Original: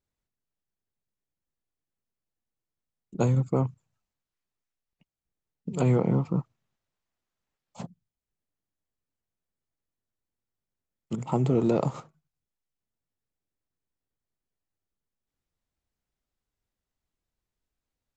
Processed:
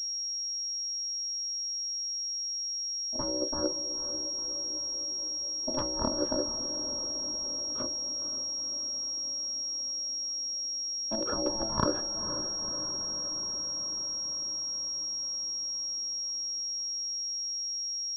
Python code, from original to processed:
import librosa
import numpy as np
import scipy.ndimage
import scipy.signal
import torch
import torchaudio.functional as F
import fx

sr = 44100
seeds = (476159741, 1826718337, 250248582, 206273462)

y = fx.octave_divider(x, sr, octaves=1, level_db=-6.0)
y = fx.highpass(y, sr, hz=64.0, slope=6)
y = fx.hum_notches(y, sr, base_hz=50, count=3)
y = fx.over_compress(y, sr, threshold_db=-27.0, ratio=-0.5)
y = fx.fixed_phaser(y, sr, hz=730.0, stages=4)
y = y * np.sin(2.0 * np.pi * 440.0 * np.arange(len(y)) / sr)
y = fx.echo_diffused(y, sr, ms=490, feedback_pct=71, wet_db=-10.5)
y = fx.pwm(y, sr, carrier_hz=5600.0)
y = y * librosa.db_to_amplitude(3.0)